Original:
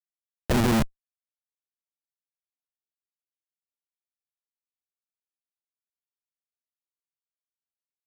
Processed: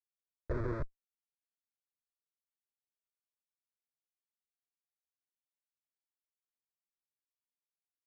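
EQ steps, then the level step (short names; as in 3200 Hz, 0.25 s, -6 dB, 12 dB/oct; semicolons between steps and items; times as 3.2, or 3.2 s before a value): tape spacing loss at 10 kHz 43 dB; fixed phaser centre 790 Hz, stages 6; -7.5 dB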